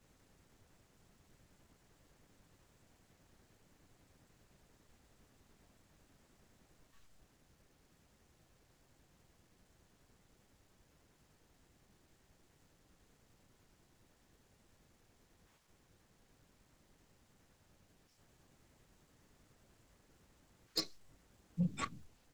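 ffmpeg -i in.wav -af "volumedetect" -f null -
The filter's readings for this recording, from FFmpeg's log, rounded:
mean_volume: -53.4 dB
max_volume: -25.7 dB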